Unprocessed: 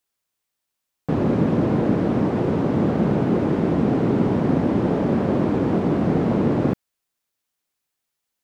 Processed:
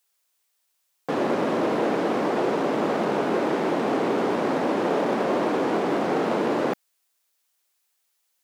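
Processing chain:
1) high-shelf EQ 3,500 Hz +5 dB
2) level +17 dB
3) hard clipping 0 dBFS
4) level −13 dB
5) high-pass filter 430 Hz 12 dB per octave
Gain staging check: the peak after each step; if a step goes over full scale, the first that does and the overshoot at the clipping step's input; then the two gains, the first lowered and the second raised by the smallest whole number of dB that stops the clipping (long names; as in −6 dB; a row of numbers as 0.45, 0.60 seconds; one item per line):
−7.0, +10.0, 0.0, −13.0, −11.5 dBFS
step 2, 10.0 dB
step 2 +7 dB, step 4 −3 dB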